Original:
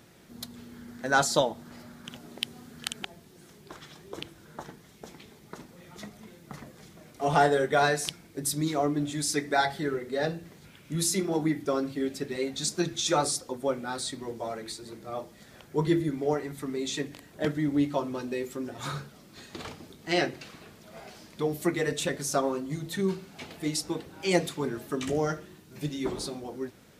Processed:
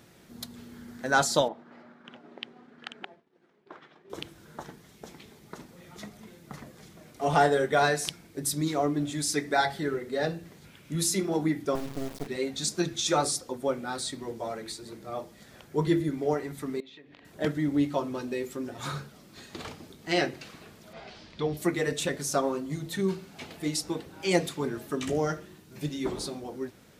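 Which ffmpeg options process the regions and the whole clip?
-filter_complex "[0:a]asettb=1/sr,asplit=3[a][b][c];[a]atrim=end=1.484[d];[b]atrim=start=1.48:end=4.1,asetpts=PTS-STARTPTS,afade=t=in:d=0.004:c=qsin,afade=t=out:st=2.616:d=0.004:c=qsin,highpass=280,lowpass=2.1k,agate=range=-33dB:threshold=-51dB:ratio=3:release=100:detection=peak[e];[c]atrim=start=4.096[f];[d][e]acrossfade=d=0.004:c1=hsin:c2=qsin[g];[g][f]acrossfade=d=0.004:c1=qsin:c2=hsin,asettb=1/sr,asplit=3[h][i][j];[h]atrim=end=11.754[k];[i]atrim=start=11.75:end=12.27,asetpts=PTS-STARTPTS,afade=t=in:d=0.004:c=qsin,afade=t=out:st=0.516:d=0.004:c=qsin,tiltshelf=f=750:g=7,acrossover=split=150|1700[l][m][n];[l]acompressor=threshold=-43dB:ratio=4[o];[m]acompressor=threshold=-29dB:ratio=4[p];[n]acompressor=threshold=-51dB:ratio=4[q];[o][p][q]amix=inputs=3:normalize=0,acrusher=bits=4:dc=4:mix=0:aa=0.000001[r];[j]atrim=start=12.266[s];[k][r]acrossfade=d=0.004:c1=hsin:c2=qsin[t];[t][s]acrossfade=d=0.004:c1=qsin:c2=hsin,asettb=1/sr,asplit=3[u][v][w];[u]atrim=end=16.804[x];[v]atrim=start=16.8:end=17.25,asetpts=PTS-STARTPTS,afade=t=in:d=0.004:c=qsin,afade=t=out:st=0.446:d=0.004:c=qsin,lowpass=f=3.6k:w=0.5412,lowpass=f=3.6k:w=1.3066,lowshelf=f=220:g=-9,acompressor=threshold=-47dB:ratio=12:attack=3.2:release=140:knee=1:detection=peak[y];[w]atrim=start=17.246[z];[x][y]acrossfade=d=0.004:c1=hsin:c2=qsin[aa];[aa][z]acrossfade=d=0.004:c1=qsin:c2=hsin,asettb=1/sr,asplit=3[ab][ac][ad];[ab]atrim=end=20.934[ae];[ac]atrim=start=20.93:end=21.57,asetpts=PTS-STARTPTS,afade=t=in:d=0.004:c=qsin,afade=t=out:st=0.636:d=0.004:c=qsin,asubboost=boost=11.5:cutoff=120,lowpass=f=4k:t=q:w=1.5[af];[ad]atrim=start=21.566[ag];[ae][af]acrossfade=d=0.004:c1=hsin:c2=qsin[ah];[ah][ag]acrossfade=d=0.004:c1=qsin:c2=hsin"

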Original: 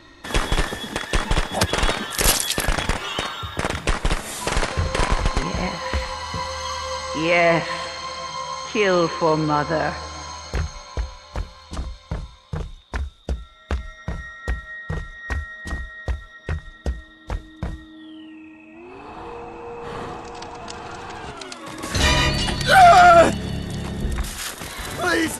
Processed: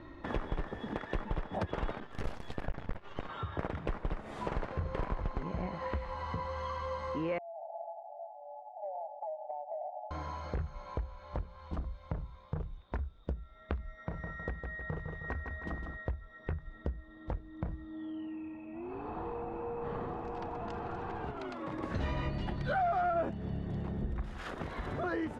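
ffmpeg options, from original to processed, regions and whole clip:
-filter_complex "[0:a]asettb=1/sr,asplit=3[a][b][c];[a]atrim=end=2.004[d];[b]atrim=start=2:end=3.29,asetpts=PTS-STARTPTS,afade=t=in:d=0.004:c=qsin,afade=t=out:st=1.286:d=0.004:c=qsin,agate=range=-33dB:threshold=-26dB:ratio=3:release=100:detection=peak,asubboost=boost=4:cutoff=160,aeval=exprs='max(val(0),0)':c=same[e];[c]atrim=start=3.286[f];[d][e]acrossfade=d=0.004:c1=hsin:c2=qsin[g];[g][f]acrossfade=d=0.004:c1=qsin:c2=hsin,asettb=1/sr,asplit=3[h][i][j];[h]atrim=end=7.384[k];[i]atrim=start=7.38:end=10.11,asetpts=PTS-STARTPTS,afade=t=in:d=0.004:c=qsin,afade=t=out:st=2.726:d=0.004:c=qsin,asuperpass=centerf=710:order=20:qfactor=2.4,acompressor=threshold=-32dB:ratio=16:attack=3.2:release=140:knee=1:detection=peak[l];[j]atrim=start=10.106[m];[k][l]acrossfade=d=0.004:c1=hsin:c2=qsin[n];[n][m]acrossfade=d=0.004:c1=qsin:c2=hsin,asettb=1/sr,asplit=3[o][p][q];[o]atrim=end=13.964[r];[p]atrim=start=13.96:end=15.97,asetpts=PTS-STARTPTS,afade=t=in:d=0.004:c=qsin,afade=t=out:st=2.006:d=0.004:c=qsin,lowshelf=f=120:g=-9,aecho=1:1:157|314|471|628:0.447|0.17|0.0645|0.0245,atrim=end_sample=88641[s];[q]atrim=start=15.966[t];[r][s]acrossfade=d=0.004:c1=hsin:c2=qsin[u];[u][t]acrossfade=d=0.004:c1=qsin:c2=hsin,lowpass=f=1k:p=1,aemphasis=mode=reproduction:type=75kf,acompressor=threshold=-36dB:ratio=3"

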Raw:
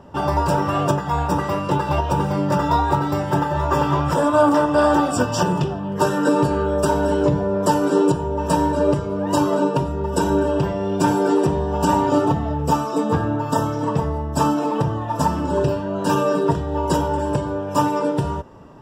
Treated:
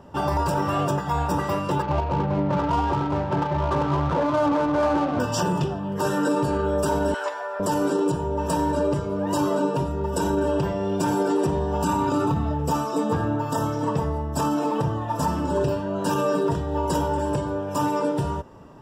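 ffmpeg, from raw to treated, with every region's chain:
-filter_complex "[0:a]asettb=1/sr,asplit=3[a][b][c];[a]atrim=end=1.824[d];[b]atrim=start=1.82:end=5.2,asetpts=PTS-STARTPTS,afade=t=in:d=0.004:c=qsin,afade=t=out:st=3.376:d=0.004:c=qsin,lowpass=1.8k,adynamicsmooth=sensitivity=2:basefreq=780,aecho=1:1:392:0.237,atrim=end_sample=149058[e];[c]atrim=start=5.196[f];[d][e]acrossfade=d=0.004:c1=hsin:c2=qsin[g];[g][f]acrossfade=d=0.004:c1=qsin:c2=hsin,asettb=1/sr,asplit=3[h][i][j];[h]atrim=end=7.144[k];[i]atrim=start=7.14:end=7.6,asetpts=PTS-STARTPTS,afade=t=in:d=0.004:c=qsin,afade=t=out:st=0.456:d=0.004:c=qsin,highpass=f=670:w=0.5412,highpass=f=670:w=1.3066,equalizer=f=1.7k:w=1.7:g=8.5[l];[j]atrim=start=7.596[m];[k][l]acrossfade=d=0.004:c1=hsin:c2=qsin[n];[n][m]acrossfade=d=0.004:c1=qsin:c2=hsin,asettb=1/sr,asplit=3[o][p][q];[o]atrim=end=11.844[r];[p]atrim=start=11.84:end=12.51,asetpts=PTS-STARTPTS,afade=t=in:d=0.004:c=qsin,afade=t=out:st=0.666:d=0.004:c=qsin,bandreject=f=5.4k:w=20,aecho=1:1:0.8:0.41,atrim=end_sample=29547[s];[q]atrim=start=12.506[t];[r][s]acrossfade=d=0.004:c1=hsin:c2=qsin[u];[u][t]acrossfade=d=0.004:c1=qsin:c2=hsin,highshelf=f=7.8k:g=4.5,alimiter=limit=-12dB:level=0:latency=1:release=20,volume=-2.5dB"

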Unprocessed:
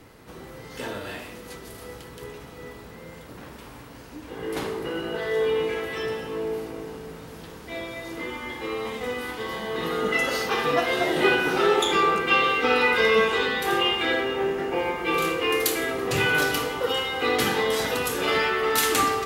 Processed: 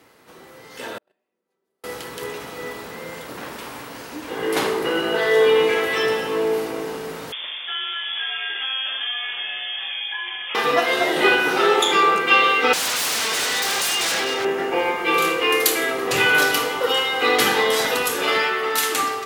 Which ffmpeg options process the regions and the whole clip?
-filter_complex "[0:a]asettb=1/sr,asplit=3[a][b][c];[a]atrim=end=0.984[d];[b]atrim=start=0.98:end=1.84,asetpts=PTS-STARTPTS,afade=t=in:d=0.004:c=qsin,afade=t=out:st=0.856:d=0.004:c=qsin,equalizer=f=380:w=0.4:g=13,aecho=1:1:5.2:0.44,atrim=end_sample=37926,agate=range=-53dB:threshold=-20dB:ratio=16:release=100:detection=peak[e];[c]atrim=start=1.836[f];[d][e]acrossfade=d=0.004:c1=hsin:c2=qsin[g];[g][f]acrossfade=d=0.004:c1=qsin:c2=hsin,asettb=1/sr,asplit=3[h][i][j];[h]atrim=end=7.324[k];[i]atrim=start=7.32:end=10.55,asetpts=PTS-STARTPTS,afade=t=in:d=0.004:c=qsin,afade=t=out:st=3.226:d=0.004:c=qsin,acompressor=threshold=-35dB:ratio=3:attack=3.2:release=140:knee=1:detection=peak,highpass=150,lowpass=f=3.1k:t=q:w=0.5098,lowpass=f=3.1k:t=q:w=0.6013,lowpass=f=3.1k:t=q:w=0.9,lowpass=f=3.1k:t=q:w=2.563,afreqshift=-3700[l];[j]atrim=start=10.546[m];[k][l]acrossfade=d=0.004:c1=hsin:c2=qsin[n];[n][m]acrossfade=d=0.004:c1=qsin:c2=hsin,asettb=1/sr,asplit=3[o][p][q];[o]atrim=end=12.734[r];[p]atrim=start=12.73:end=14.45,asetpts=PTS-STARTPTS,afade=t=in:d=0.004:c=qsin,afade=t=out:st=1.716:d=0.004:c=qsin,equalizer=f=5.3k:t=o:w=0.76:g=14.5,bandreject=f=50:t=h:w=6,bandreject=f=100:t=h:w=6,bandreject=f=150:t=h:w=6,bandreject=f=200:t=h:w=6,bandreject=f=250:t=h:w=6,bandreject=f=300:t=h:w=6,bandreject=f=350:t=h:w=6,bandreject=f=400:t=h:w=6,bandreject=f=450:t=h:w=6,aeval=exprs='0.0631*(abs(mod(val(0)/0.0631+3,4)-2)-1)':c=same[s];[q]atrim=start=14.446[t];[r][s]acrossfade=d=0.004:c1=hsin:c2=qsin[u];[u][t]acrossfade=d=0.004:c1=qsin:c2=hsin,dynaudnorm=f=260:g=11:m=11.5dB,highpass=f=450:p=1"

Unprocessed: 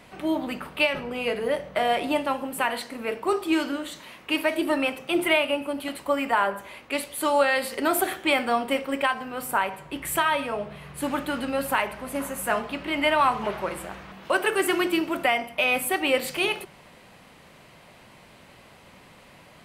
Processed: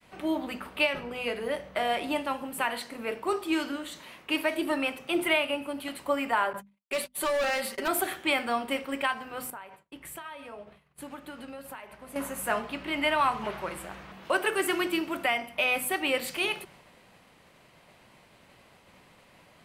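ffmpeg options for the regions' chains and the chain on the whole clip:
-filter_complex "[0:a]asettb=1/sr,asplit=3[a][b][c];[a]atrim=end=6.534[d];[b]atrim=start=6.53:end=7.88,asetpts=PTS-STARTPTS,afade=t=in:d=0.004:c=qsin,afade=t=out:st=1.346:d=0.004:c=qsin,aecho=1:1:5.2:0.75,atrim=end_sample=59535,volume=21dB,asoftclip=hard,volume=-21dB,agate=range=-45dB:threshold=-36dB:ratio=16:release=100:detection=peak[e];[c]atrim=start=7.876[f];[d][e]acrossfade=d=0.004:c1=hsin:c2=qsin[g];[g][f]acrossfade=d=0.004:c1=qsin:c2=hsin,asettb=1/sr,asplit=3[h][i][j];[h]atrim=end=9.504[k];[i]atrim=start=9.5:end=12.16,asetpts=PTS-STARTPTS,afade=t=in:d=0.004:c=qsin,afade=t=out:st=2.656:d=0.004:c=qsin,acompressor=threshold=-33dB:ratio=6:attack=3.2:release=140:knee=1:detection=peak,agate=range=-33dB:threshold=-34dB:ratio=3:release=100:detection=peak[l];[j]atrim=start=12.156[m];[k][l]acrossfade=d=0.004:c1=hsin:c2=qsin[n];[n][m]acrossfade=d=0.004:c1=qsin:c2=hsin,bandreject=f=50:t=h:w=6,bandreject=f=100:t=h:w=6,bandreject=f=150:t=h:w=6,bandreject=f=200:t=h:w=6,bandreject=f=250:t=h:w=6,agate=range=-33dB:threshold=-47dB:ratio=3:detection=peak,adynamicequalizer=threshold=0.0141:dfrequency=500:dqfactor=0.84:tfrequency=500:tqfactor=0.84:attack=5:release=100:ratio=0.375:range=2:mode=cutabove:tftype=bell,volume=-3dB"

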